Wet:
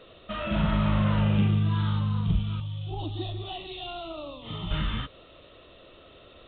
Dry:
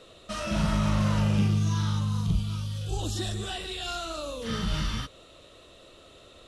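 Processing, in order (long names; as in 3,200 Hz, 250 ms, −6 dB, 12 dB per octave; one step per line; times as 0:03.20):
0:02.60–0:04.71: phaser with its sweep stopped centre 320 Hz, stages 8
level +1 dB
mu-law 64 kbit/s 8,000 Hz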